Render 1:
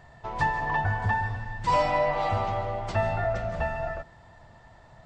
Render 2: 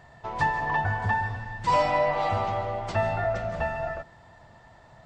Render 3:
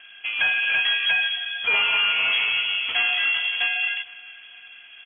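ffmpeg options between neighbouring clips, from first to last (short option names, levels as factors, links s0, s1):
-af "lowshelf=f=63:g=-8,volume=1.12"
-filter_complex "[0:a]acrossover=split=2100[s0][s1];[s0]asoftclip=type=hard:threshold=0.0562[s2];[s2][s1]amix=inputs=2:normalize=0,aecho=1:1:458|916|1374|1832:0.0841|0.0421|0.021|0.0105,lowpass=f=2900:t=q:w=0.5098,lowpass=f=2900:t=q:w=0.6013,lowpass=f=2900:t=q:w=0.9,lowpass=f=2900:t=q:w=2.563,afreqshift=-3400,volume=2"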